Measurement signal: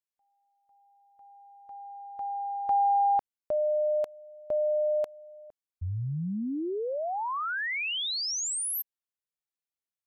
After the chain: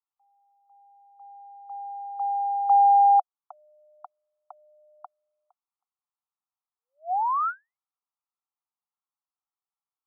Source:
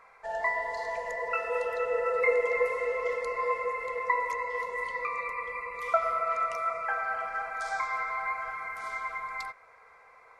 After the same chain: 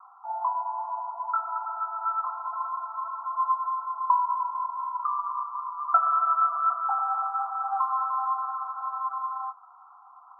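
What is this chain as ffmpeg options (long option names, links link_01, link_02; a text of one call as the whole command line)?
ffmpeg -i in.wav -af "asuperpass=centerf=1000:order=20:qfactor=1.5,volume=7dB" out.wav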